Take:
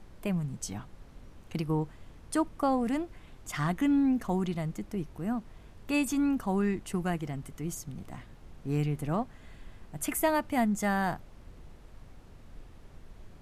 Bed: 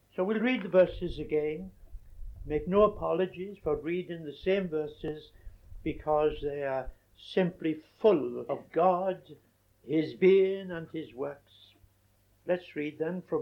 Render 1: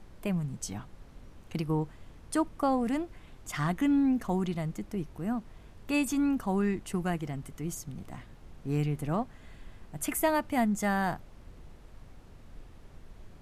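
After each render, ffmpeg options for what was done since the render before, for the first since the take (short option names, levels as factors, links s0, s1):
-af anull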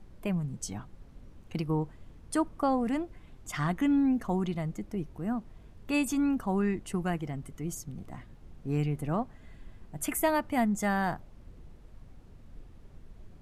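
-af "afftdn=nr=6:nf=-53"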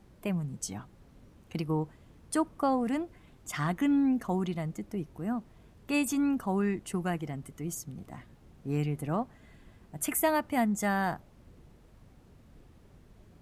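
-af "highpass=f=90:p=1,highshelf=f=9800:g=5"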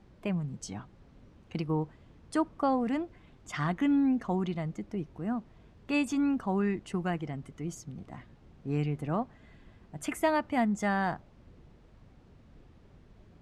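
-af "lowpass=5200"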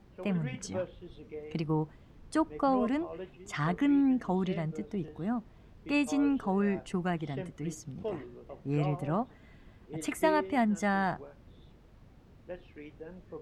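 -filter_complex "[1:a]volume=0.211[s0];[0:a][s0]amix=inputs=2:normalize=0"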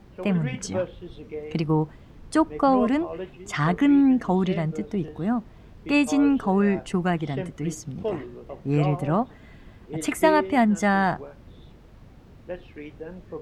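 -af "volume=2.51"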